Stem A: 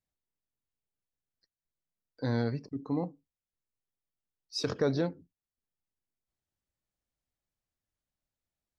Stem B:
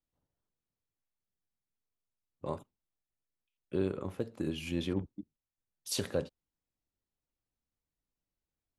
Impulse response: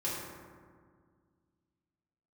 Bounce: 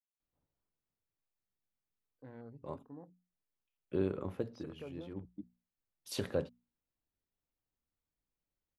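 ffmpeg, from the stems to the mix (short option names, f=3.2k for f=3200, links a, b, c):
-filter_complex "[0:a]afwtdn=0.00891,volume=-19dB,asplit=2[a][b];[1:a]adelay=200,volume=-1dB[c];[b]apad=whole_len=396221[d];[c][d]sidechaincompress=threshold=-57dB:ratio=6:attack=8.7:release=361[e];[a][e]amix=inputs=2:normalize=0,equalizer=f=7.9k:w=0.55:g=-9.5,bandreject=f=60:t=h:w=6,bandreject=f=120:t=h:w=6,bandreject=f=180:t=h:w=6,bandreject=f=240:t=h:w=6"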